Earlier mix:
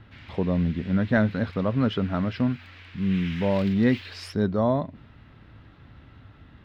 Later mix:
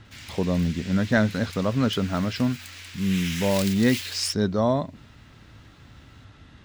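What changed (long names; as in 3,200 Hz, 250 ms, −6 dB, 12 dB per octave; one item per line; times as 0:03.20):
speech: add high-frequency loss of the air 89 metres
master: remove high-frequency loss of the air 380 metres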